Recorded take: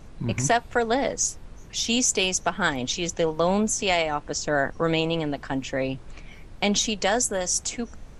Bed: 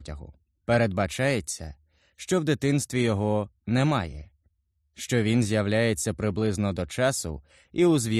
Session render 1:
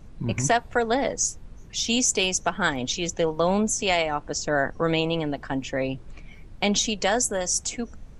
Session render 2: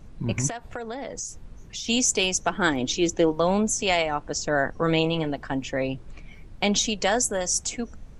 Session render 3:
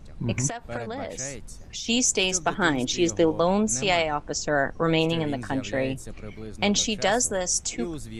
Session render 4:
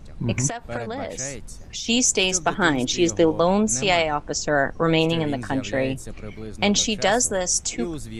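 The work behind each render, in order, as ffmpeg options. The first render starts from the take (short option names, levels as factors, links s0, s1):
-af "afftdn=nr=6:nf=-44"
-filter_complex "[0:a]asettb=1/sr,asplit=3[s0][s1][s2];[s0]atrim=end=0.494[s3];[s1]atrim=start=0.49:end=1.88,asetpts=PTS-STARTPTS,afade=t=in:d=0.004:c=qsin,afade=t=out:st=1.386:d=0.004:c=qsin,acompressor=threshold=0.0316:ratio=6:attack=3.2:release=140:knee=1:detection=peak[s4];[s2]atrim=start=1.876[s5];[s3][s4]acrossfade=d=0.004:c1=hsin:c2=qsin[s6];[s6][s5]acrossfade=d=0.004:c1=qsin:c2=hsin,asettb=1/sr,asplit=3[s7][s8][s9];[s7]atrim=end=2.504[s10];[s8]atrim=start=2.5:end=3.32,asetpts=PTS-STARTPTS,afade=t=in:d=0.004:c=qsin,afade=t=out:st=0.816:d=0.004:c=qsin,equalizer=f=330:t=o:w=0.49:g=10[s11];[s9]atrim=start=3.316[s12];[s10][s11]acrossfade=d=0.004:c1=hsin:c2=qsin[s13];[s13][s12]acrossfade=d=0.004:c1=qsin:c2=hsin,asettb=1/sr,asplit=3[s14][s15][s16];[s14]atrim=end=4.784[s17];[s15]atrim=start=4.78:end=5.3,asetpts=PTS-STARTPTS,afade=t=in:d=0.004:c=qsin,afade=t=out:st=0.516:d=0.004:c=qsin,asplit=2[s18][s19];[s19]adelay=25,volume=0.299[s20];[s18][s20]amix=inputs=2:normalize=0,atrim=end_sample=22932[s21];[s16]atrim=start=5.296[s22];[s17][s21]acrossfade=d=0.004:c1=hsin:c2=qsin[s23];[s23][s22]acrossfade=d=0.004:c1=qsin:c2=hsin"
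-filter_complex "[1:a]volume=0.211[s0];[0:a][s0]amix=inputs=2:normalize=0"
-af "volume=1.41"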